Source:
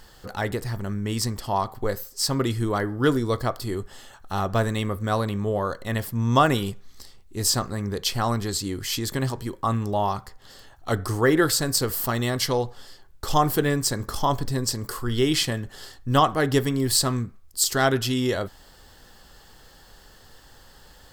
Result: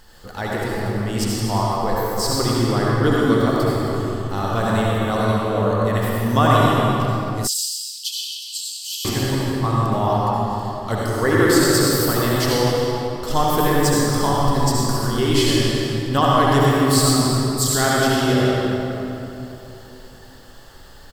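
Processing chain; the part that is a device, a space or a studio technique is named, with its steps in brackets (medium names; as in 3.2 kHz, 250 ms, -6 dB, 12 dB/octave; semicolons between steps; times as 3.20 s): cave (delay 266 ms -12.5 dB; reverberation RT60 3.2 s, pre-delay 61 ms, DRR -5.5 dB); 7.47–9.05 s: Chebyshev high-pass 2.8 kHz, order 6; trim -1 dB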